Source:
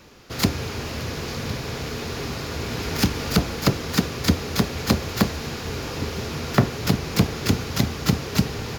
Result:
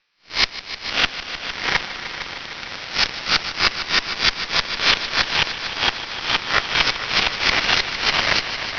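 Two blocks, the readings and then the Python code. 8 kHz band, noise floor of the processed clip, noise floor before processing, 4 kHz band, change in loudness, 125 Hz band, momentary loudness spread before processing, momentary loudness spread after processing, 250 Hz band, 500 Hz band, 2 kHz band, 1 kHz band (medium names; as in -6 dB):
-1.0 dB, -37 dBFS, -33 dBFS, +11.0 dB, +5.0 dB, -14.5 dB, 8 LU, 11 LU, -12.5 dB, -3.5 dB, +12.0 dB, +6.0 dB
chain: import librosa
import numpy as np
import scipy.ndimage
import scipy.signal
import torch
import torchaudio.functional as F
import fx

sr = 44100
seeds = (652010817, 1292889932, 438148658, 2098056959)

y = fx.spec_swells(x, sr, rise_s=0.51)
y = scipy.signal.sosfilt(scipy.signal.butter(2, 1500.0, 'highpass', fs=sr, output='sos'), y)
y = fx.echo_pitch(y, sr, ms=388, semitones=-7, count=2, db_per_echo=-3.0)
y = fx.peak_eq(y, sr, hz=2100.0, db=4.0, octaves=1.3)
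y = fx.cheby_harmonics(y, sr, harmonics=(2, 3), levels_db=(-11, -10), full_scale_db=-16.5)
y = scipy.signal.sosfilt(scipy.signal.butter(16, 5700.0, 'lowpass', fs=sr, output='sos'), y)
y = fx.echo_heads(y, sr, ms=152, heads='all three', feedback_pct=64, wet_db=-15.0)
y = y * 10.0 ** (6.5 / 20.0)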